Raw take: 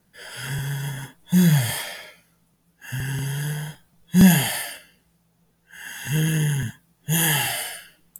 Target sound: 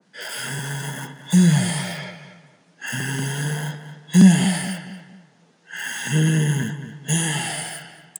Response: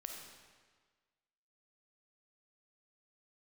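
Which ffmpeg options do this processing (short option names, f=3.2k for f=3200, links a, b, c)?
-filter_complex "[0:a]highpass=f=180:w=0.5412,highpass=f=180:w=1.3066,asplit=2[a][b];[b]alimiter=limit=-15.5dB:level=0:latency=1,volume=-1dB[c];[a][c]amix=inputs=2:normalize=0,aresample=22050,aresample=44100,acrossover=split=7100[d][e];[d]dynaudnorm=f=290:g=13:m=11.5dB[f];[e]acrusher=bits=6:mix=0:aa=0.000001[g];[f][g]amix=inputs=2:normalize=0,crystalizer=i=1:c=0,acrossover=split=250[h][i];[i]acompressor=threshold=-27dB:ratio=2.5[j];[h][j]amix=inputs=2:normalize=0,asplit=2[k][l];[l]adelay=227,lowpass=f=1.9k:p=1,volume=-11dB,asplit=2[m][n];[n]adelay=227,lowpass=f=1.9k:p=1,volume=0.38,asplit=2[o][p];[p]adelay=227,lowpass=f=1.9k:p=1,volume=0.38,asplit=2[q][r];[r]adelay=227,lowpass=f=1.9k:p=1,volume=0.38[s];[k][m][o][q][s]amix=inputs=5:normalize=0,adynamicequalizer=threshold=0.0112:dfrequency=1700:dqfactor=0.7:tfrequency=1700:tqfactor=0.7:attack=5:release=100:ratio=0.375:range=3:mode=cutabove:tftype=highshelf,volume=1dB"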